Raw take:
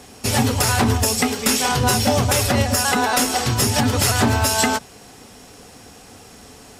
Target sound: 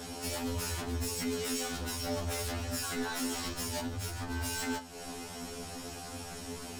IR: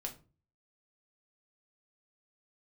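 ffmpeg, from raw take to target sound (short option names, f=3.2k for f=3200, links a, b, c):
-filter_complex "[0:a]asettb=1/sr,asplit=3[a][b][c];[a]atrim=end=3.864[d];[b]atrim=start=3.86:end=4.3,asetpts=PTS-STARTPTS,afade=t=in:d=0.004:c=qsin,afade=t=out:st=0.436:d=0.004:c=qsin,equalizer=f=110:w=2.6:g=14[e];[c]atrim=start=4.296[f];[d][e]acrossfade=d=0.004:c1=hsin:c2=qsin[g];[g][f]acrossfade=d=0.004:c1=qsin:c2=hsin,acompressor=threshold=-31dB:ratio=6,asoftclip=type=hard:threshold=-32.5dB,asplit=2[h][i];[1:a]atrim=start_sample=2205,atrim=end_sample=4410[j];[i][j]afir=irnorm=-1:irlink=0,volume=3.5dB[k];[h][k]amix=inputs=2:normalize=0,afftfilt=real='re*2*eq(mod(b,4),0)':imag='im*2*eq(mod(b,4),0)':win_size=2048:overlap=0.75,volume=-4dB"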